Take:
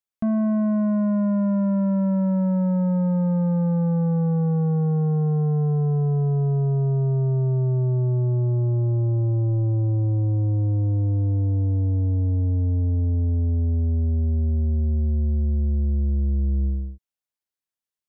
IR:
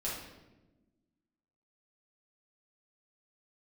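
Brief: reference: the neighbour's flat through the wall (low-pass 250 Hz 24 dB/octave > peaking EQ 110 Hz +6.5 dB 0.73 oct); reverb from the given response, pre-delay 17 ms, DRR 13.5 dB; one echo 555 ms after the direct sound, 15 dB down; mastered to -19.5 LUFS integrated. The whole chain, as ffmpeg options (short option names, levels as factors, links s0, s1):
-filter_complex "[0:a]aecho=1:1:555:0.178,asplit=2[s0][s1];[1:a]atrim=start_sample=2205,adelay=17[s2];[s1][s2]afir=irnorm=-1:irlink=0,volume=0.141[s3];[s0][s3]amix=inputs=2:normalize=0,lowpass=f=250:w=0.5412,lowpass=f=250:w=1.3066,equalizer=f=110:t=o:w=0.73:g=6.5,volume=0.891"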